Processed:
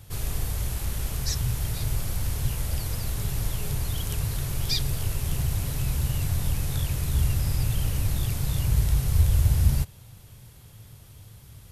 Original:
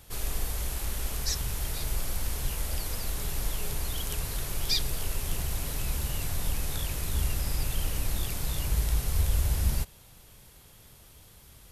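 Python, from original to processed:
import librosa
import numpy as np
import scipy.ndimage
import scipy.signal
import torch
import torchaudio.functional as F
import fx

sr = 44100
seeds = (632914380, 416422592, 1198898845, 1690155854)

y = fx.peak_eq(x, sr, hz=110.0, db=14.5, octaves=1.1)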